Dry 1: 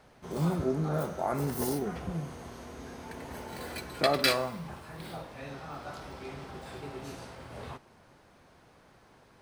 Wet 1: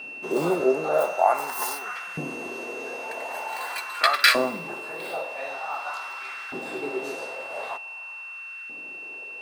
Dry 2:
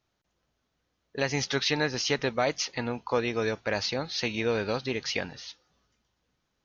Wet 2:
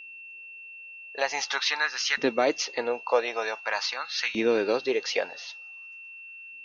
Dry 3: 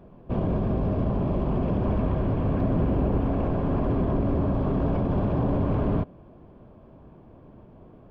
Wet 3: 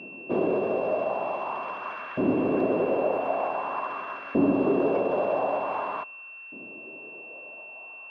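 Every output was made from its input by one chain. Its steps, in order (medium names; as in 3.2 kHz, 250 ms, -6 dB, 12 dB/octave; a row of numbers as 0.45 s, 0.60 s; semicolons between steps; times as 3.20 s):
LFO high-pass saw up 0.46 Hz 260–1600 Hz; whistle 2.7 kHz -42 dBFS; normalise loudness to -27 LUFS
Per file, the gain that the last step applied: +6.5 dB, +0.5 dB, +1.0 dB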